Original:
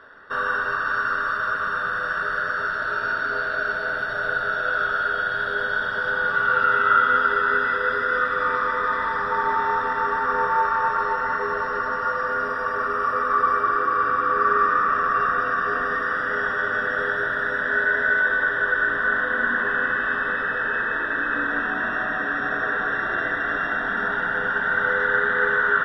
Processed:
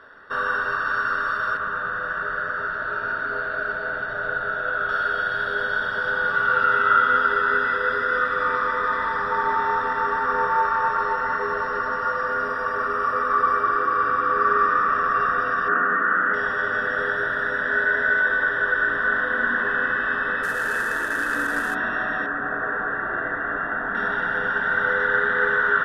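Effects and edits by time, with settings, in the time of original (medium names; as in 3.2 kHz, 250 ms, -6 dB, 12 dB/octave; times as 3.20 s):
1.57–4.89 s: distance through air 270 m
15.68–16.34 s: cabinet simulation 180–2400 Hz, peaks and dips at 190 Hz +9 dB, 330 Hz +7 dB, 470 Hz -4 dB, 1.4 kHz +7 dB
20.43–21.75 s: CVSD coder 64 kbps
22.26–23.95 s: Chebyshev low-pass 1.4 kHz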